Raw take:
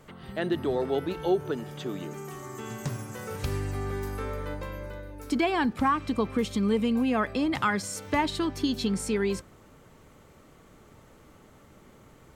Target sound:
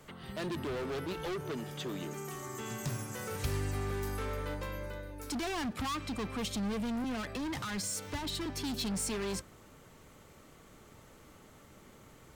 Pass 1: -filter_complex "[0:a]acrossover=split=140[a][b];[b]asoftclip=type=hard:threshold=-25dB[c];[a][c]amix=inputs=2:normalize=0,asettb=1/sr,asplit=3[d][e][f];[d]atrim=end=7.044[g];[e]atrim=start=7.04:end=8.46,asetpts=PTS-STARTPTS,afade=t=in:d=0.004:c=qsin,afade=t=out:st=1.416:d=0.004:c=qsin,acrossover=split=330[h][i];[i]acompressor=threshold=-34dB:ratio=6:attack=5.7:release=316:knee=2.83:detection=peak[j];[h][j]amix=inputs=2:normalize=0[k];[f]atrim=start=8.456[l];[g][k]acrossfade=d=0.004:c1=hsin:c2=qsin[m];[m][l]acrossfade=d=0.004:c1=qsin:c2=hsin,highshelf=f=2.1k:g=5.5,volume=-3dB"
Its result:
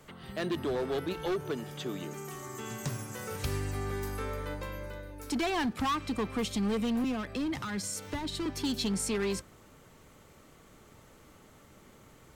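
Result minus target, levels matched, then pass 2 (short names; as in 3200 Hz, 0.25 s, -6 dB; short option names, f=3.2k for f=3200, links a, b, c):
hard clip: distortion -6 dB
-filter_complex "[0:a]acrossover=split=140[a][b];[b]asoftclip=type=hard:threshold=-32.5dB[c];[a][c]amix=inputs=2:normalize=0,asettb=1/sr,asplit=3[d][e][f];[d]atrim=end=7.044[g];[e]atrim=start=7.04:end=8.46,asetpts=PTS-STARTPTS,afade=t=in:d=0.004:c=qsin,afade=t=out:st=1.416:d=0.004:c=qsin,acrossover=split=330[h][i];[i]acompressor=threshold=-34dB:ratio=6:attack=5.7:release=316:knee=2.83:detection=peak[j];[h][j]amix=inputs=2:normalize=0[k];[f]atrim=start=8.456[l];[g][k]acrossfade=d=0.004:c1=hsin:c2=qsin[m];[m][l]acrossfade=d=0.004:c1=qsin:c2=hsin,highshelf=f=2.1k:g=5.5,volume=-3dB"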